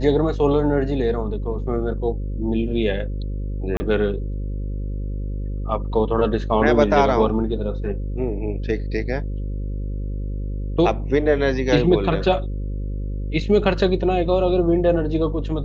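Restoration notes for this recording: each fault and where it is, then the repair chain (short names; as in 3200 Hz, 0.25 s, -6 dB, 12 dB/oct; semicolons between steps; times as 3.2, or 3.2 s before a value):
buzz 50 Hz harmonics 11 -26 dBFS
3.77–3.8 gap 30 ms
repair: de-hum 50 Hz, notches 11; interpolate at 3.77, 30 ms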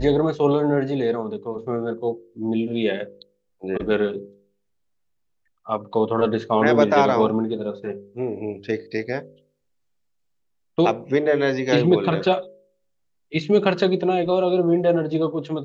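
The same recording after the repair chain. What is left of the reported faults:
none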